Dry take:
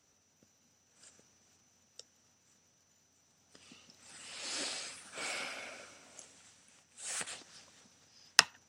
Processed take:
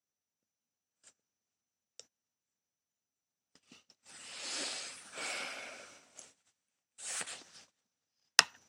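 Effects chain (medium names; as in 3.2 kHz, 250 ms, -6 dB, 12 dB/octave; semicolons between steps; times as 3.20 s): gate -57 dBFS, range -23 dB; bass shelf 120 Hz -7.5 dB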